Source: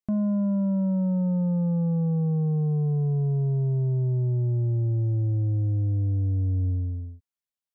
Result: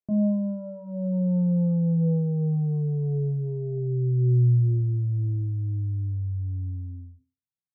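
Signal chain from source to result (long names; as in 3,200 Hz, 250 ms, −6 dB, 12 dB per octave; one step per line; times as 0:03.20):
convolution reverb RT60 0.35 s, pre-delay 3 ms, DRR 4.5 dB
healed spectral selection 0:03.74–0:04.53, 450–950 Hz both
low-pass filter sweep 530 Hz → 170 Hz, 0:02.72–0:06.35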